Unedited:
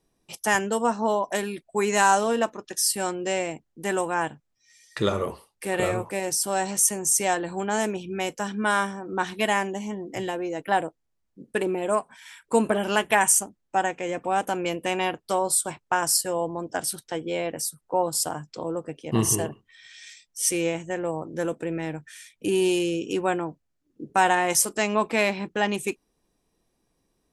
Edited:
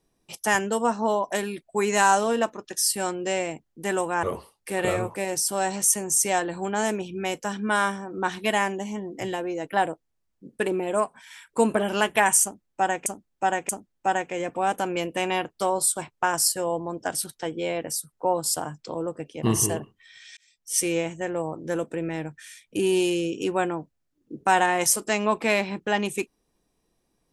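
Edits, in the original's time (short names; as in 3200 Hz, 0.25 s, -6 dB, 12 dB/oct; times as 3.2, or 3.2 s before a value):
4.23–5.18 cut
13.38–14.01 loop, 3 plays
20.06–20.47 fade in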